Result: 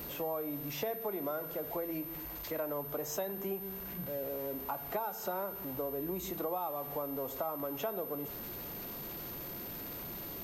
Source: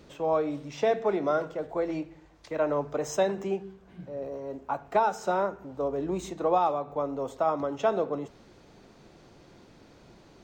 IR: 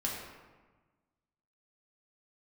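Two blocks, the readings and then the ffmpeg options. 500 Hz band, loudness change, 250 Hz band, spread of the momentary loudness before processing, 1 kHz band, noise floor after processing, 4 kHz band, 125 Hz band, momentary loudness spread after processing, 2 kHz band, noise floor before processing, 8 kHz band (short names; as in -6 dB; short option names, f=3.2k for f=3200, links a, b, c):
-9.5 dB, -8.5 dB, -6.5 dB, 11 LU, -11.0 dB, -43 dBFS, -2.0 dB, -5.0 dB, 5 LU, -8.0 dB, -56 dBFS, -2.0 dB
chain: -af "aeval=exprs='val(0)+0.5*0.00891*sgn(val(0))':c=same,acompressor=threshold=-33dB:ratio=4,aeval=exprs='val(0)+0.01*sin(2*PI*13000*n/s)':c=same,volume=-2.5dB"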